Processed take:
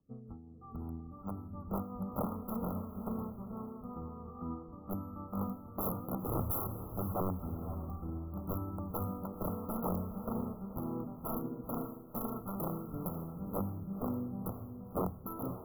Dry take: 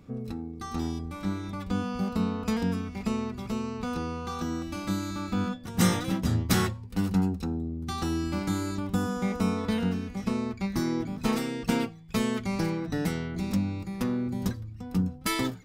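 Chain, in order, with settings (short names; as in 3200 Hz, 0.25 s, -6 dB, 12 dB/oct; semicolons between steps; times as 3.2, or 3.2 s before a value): dynamic EQ 340 Hz, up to -6 dB, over -43 dBFS, Q 1.5; rotary speaker horn 5.5 Hz, later 0.85 Hz, at 3.86; wrapped overs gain 24 dB; brick-wall FIR band-stop 1400–11000 Hz; diffused feedback echo 0.521 s, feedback 42%, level -6 dB; three-band expander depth 70%; gain -5.5 dB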